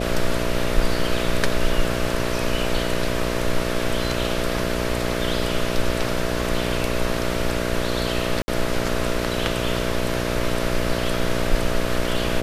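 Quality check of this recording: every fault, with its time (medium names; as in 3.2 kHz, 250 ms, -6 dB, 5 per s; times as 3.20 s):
buzz 60 Hz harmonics 11 -26 dBFS
8.42–8.48 s: dropout 60 ms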